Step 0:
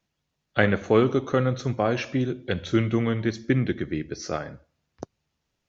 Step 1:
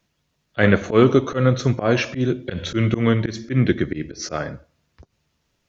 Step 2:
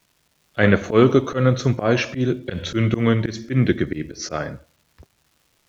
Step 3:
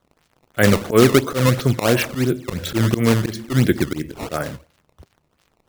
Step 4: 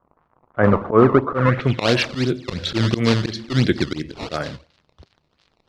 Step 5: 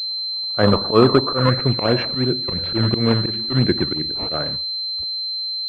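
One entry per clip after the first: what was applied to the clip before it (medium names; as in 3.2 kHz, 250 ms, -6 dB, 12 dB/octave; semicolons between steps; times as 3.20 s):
slow attack 113 ms; band-stop 790 Hz, Q 12; trim +8 dB
crackle 470 per s -49 dBFS
decimation with a swept rate 16×, swing 160% 2.9 Hz; trim +1.5 dB
low-pass sweep 1.1 kHz -> 4.4 kHz, 1.32–1.90 s; trim -1.5 dB
class-D stage that switches slowly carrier 4.1 kHz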